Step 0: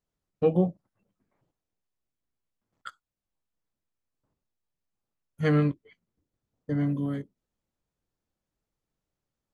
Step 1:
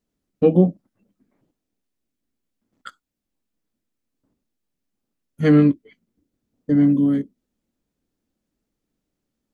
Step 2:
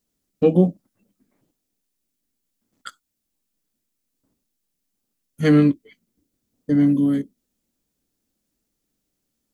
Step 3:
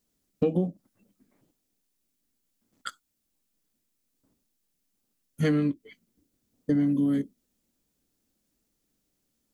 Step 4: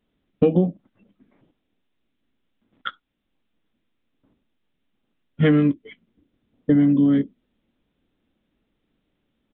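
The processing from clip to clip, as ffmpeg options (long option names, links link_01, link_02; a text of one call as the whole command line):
ffmpeg -i in.wav -af "equalizer=frequency=125:width_type=o:width=1:gain=-4,equalizer=frequency=250:width_type=o:width=1:gain=11,equalizer=frequency=1000:width_type=o:width=1:gain=-4,volume=5dB" out.wav
ffmpeg -i in.wav -af "highshelf=frequency=3900:gain=12,volume=-1dB" out.wav
ffmpeg -i in.wav -af "acompressor=threshold=-21dB:ratio=10" out.wav
ffmpeg -i in.wav -af "aresample=8000,aresample=44100,volume=7.5dB" out.wav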